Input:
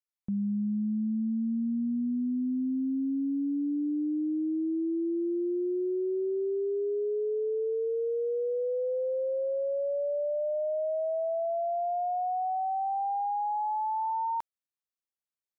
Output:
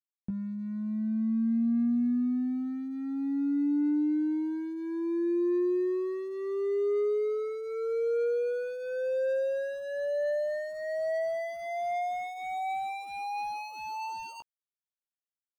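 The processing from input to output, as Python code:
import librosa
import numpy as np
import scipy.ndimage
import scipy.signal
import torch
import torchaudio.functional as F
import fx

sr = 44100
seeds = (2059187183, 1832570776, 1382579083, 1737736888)

y = scipy.signal.medfilt(x, 41)
y = fx.doubler(y, sr, ms=17.0, db=-6.0)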